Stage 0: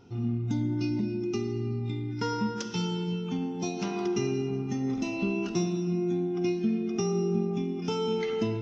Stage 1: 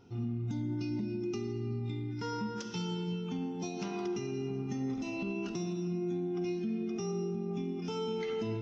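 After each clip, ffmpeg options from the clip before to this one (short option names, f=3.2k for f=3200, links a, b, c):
-af "alimiter=limit=-23.5dB:level=0:latency=1:release=82,volume=-4dB"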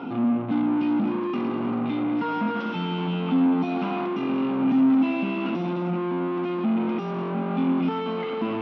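-filter_complex "[0:a]asplit=2[a][b];[b]highpass=f=720:p=1,volume=32dB,asoftclip=type=tanh:threshold=-27dB[c];[a][c]amix=inputs=2:normalize=0,lowpass=f=1.5k:p=1,volume=-6dB,highpass=f=160:w=0.5412,highpass=f=160:w=1.3066,equalizer=f=160:t=q:w=4:g=3,equalizer=f=260:t=q:w=4:g=9,equalizer=f=400:t=q:w=4:g=-9,equalizer=f=1.2k:t=q:w=4:g=3,equalizer=f=1.8k:t=q:w=4:g=-9,lowpass=f=3.1k:w=0.5412,lowpass=f=3.1k:w=1.3066,volume=7.5dB"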